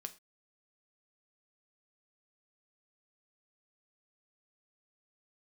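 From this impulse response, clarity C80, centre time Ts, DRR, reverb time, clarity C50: 22.0 dB, 4 ms, 8.0 dB, no single decay rate, 17.5 dB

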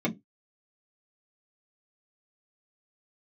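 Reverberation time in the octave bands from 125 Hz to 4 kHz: 0.20 s, 0.20 s, 0.20 s, 0.15 s, 0.15 s, 0.10 s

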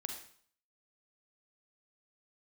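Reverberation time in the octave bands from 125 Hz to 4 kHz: 0.60 s, 0.50 s, 0.55 s, 0.55 s, 0.50 s, 0.55 s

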